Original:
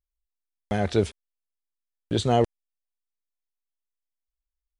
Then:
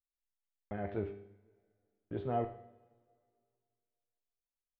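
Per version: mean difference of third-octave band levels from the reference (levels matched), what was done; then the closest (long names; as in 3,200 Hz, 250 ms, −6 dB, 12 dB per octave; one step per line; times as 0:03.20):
7.0 dB: low-pass filter 2,100 Hz 24 dB per octave
mains-hum notches 50/100/150/200 Hz
tuned comb filter 100 Hz, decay 0.65 s, harmonics all, mix 80%
coupled-rooms reverb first 0.62 s, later 2.2 s, from −17 dB, DRR 9.5 dB
level −3.5 dB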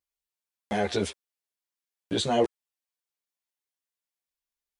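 4.0 dB: high-pass filter 360 Hz 6 dB per octave
notch filter 1,300 Hz
in parallel at +1.5 dB: brickwall limiter −23 dBFS, peak gain reduction 11 dB
on the sum: string-ensemble chorus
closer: second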